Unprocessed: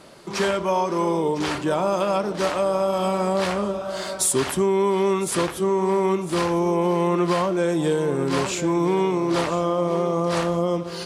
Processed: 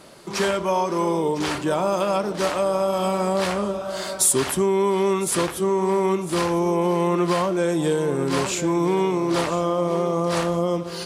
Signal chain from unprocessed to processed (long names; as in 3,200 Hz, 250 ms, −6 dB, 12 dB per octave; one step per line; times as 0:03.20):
high-shelf EQ 9,100 Hz +7 dB